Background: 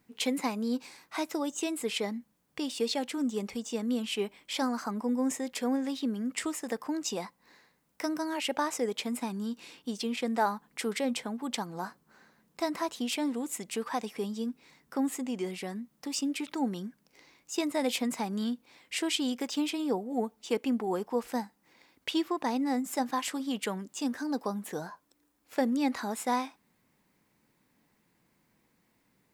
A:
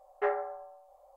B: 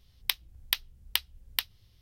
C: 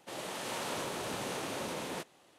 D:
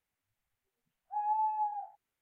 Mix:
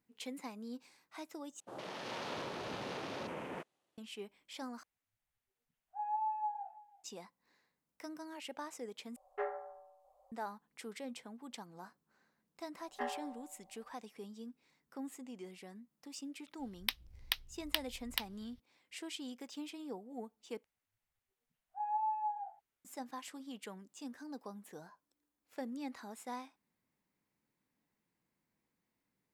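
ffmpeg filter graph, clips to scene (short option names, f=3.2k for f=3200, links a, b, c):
-filter_complex "[4:a]asplit=2[a][b];[1:a]asplit=2[c][d];[0:a]volume=-14.5dB[e];[3:a]afwtdn=0.00501[f];[a]aecho=1:1:331:0.1[g];[c]asplit=2[h][i];[i]adelay=115,lowpass=f=1.8k:p=1,volume=-20dB,asplit=2[j][k];[k]adelay=115,lowpass=f=1.8k:p=1,volume=0.32,asplit=2[l][m];[m]adelay=115,lowpass=f=1.8k:p=1,volume=0.32[n];[h][j][l][n]amix=inputs=4:normalize=0[o];[d]aecho=1:1:1.1:0.53[p];[2:a]highshelf=f=4.6k:g=-6.5[q];[e]asplit=5[r][s][t][u][v];[r]atrim=end=1.604[w];[f]atrim=end=2.38,asetpts=PTS-STARTPTS,volume=-4dB[x];[s]atrim=start=3.976:end=4.834[y];[g]atrim=end=2.21,asetpts=PTS-STARTPTS,volume=-5dB[z];[t]atrim=start=7.036:end=9.164[aa];[o]atrim=end=1.16,asetpts=PTS-STARTPTS,volume=-9dB[ab];[u]atrim=start=10.316:end=20.644[ac];[b]atrim=end=2.21,asetpts=PTS-STARTPTS,volume=-4dB[ad];[v]atrim=start=22.846[ae];[p]atrim=end=1.16,asetpts=PTS-STARTPTS,volume=-9.5dB,afade=t=in:d=0.004:c=hsin,afade=t=out:st=1.156:d=0.004:c=hsin,adelay=12770[af];[q]atrim=end=2.01,asetpts=PTS-STARTPTS,volume=-4dB,afade=t=in:d=0.004:c=hsin,afade=t=out:st=2.006:d=0.004:c=hsin,adelay=16590[ag];[w][x]acrossfade=d=0.004:c1=hsin:c2=hsin[ah];[ah][y]acrossfade=d=0.004:c1=hsin:c2=hsin[ai];[ai][z]acrossfade=d=0.004:c1=hsin:c2=hsin[aj];[aj][aa]acrossfade=d=0.004:c1=hsin:c2=hsin[ak];[ak][ab]acrossfade=d=0.004:c1=hsin:c2=hsin[al];[al][ac]acrossfade=d=0.004:c1=hsin:c2=hsin[am];[am][ad]acrossfade=d=0.004:c1=hsin:c2=hsin[an];[an][ae]acrossfade=d=0.004:c1=hsin:c2=hsin[ao];[ao][af][ag]amix=inputs=3:normalize=0"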